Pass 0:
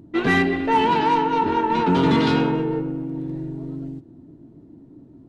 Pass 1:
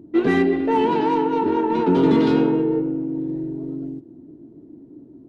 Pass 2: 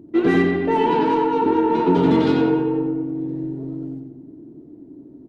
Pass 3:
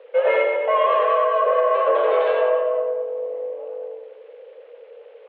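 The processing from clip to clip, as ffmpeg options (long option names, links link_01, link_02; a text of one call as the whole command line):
ffmpeg -i in.wav -af "equalizer=frequency=360:width_type=o:width=1.7:gain=12,volume=-7dB" out.wav
ffmpeg -i in.wav -filter_complex "[0:a]asplit=2[link_01][link_02];[link_02]adelay=90,lowpass=frequency=3700:poles=1,volume=-4dB,asplit=2[link_03][link_04];[link_04]adelay=90,lowpass=frequency=3700:poles=1,volume=0.5,asplit=2[link_05][link_06];[link_06]adelay=90,lowpass=frequency=3700:poles=1,volume=0.5,asplit=2[link_07][link_08];[link_08]adelay=90,lowpass=frequency=3700:poles=1,volume=0.5,asplit=2[link_09][link_10];[link_10]adelay=90,lowpass=frequency=3700:poles=1,volume=0.5,asplit=2[link_11][link_12];[link_12]adelay=90,lowpass=frequency=3700:poles=1,volume=0.5[link_13];[link_01][link_03][link_05][link_07][link_09][link_11][link_13]amix=inputs=7:normalize=0" out.wav
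ffmpeg -i in.wav -af "acrusher=bits=8:mix=0:aa=0.000001,asoftclip=type=tanh:threshold=-7.5dB,highpass=frequency=300:width_type=q:width=0.5412,highpass=frequency=300:width_type=q:width=1.307,lowpass=frequency=2900:width_type=q:width=0.5176,lowpass=frequency=2900:width_type=q:width=0.7071,lowpass=frequency=2900:width_type=q:width=1.932,afreqshift=180,volume=1.5dB" out.wav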